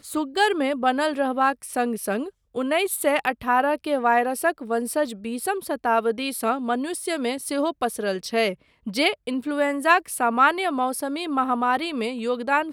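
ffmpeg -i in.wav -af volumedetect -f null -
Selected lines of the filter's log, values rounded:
mean_volume: -23.8 dB
max_volume: -3.6 dB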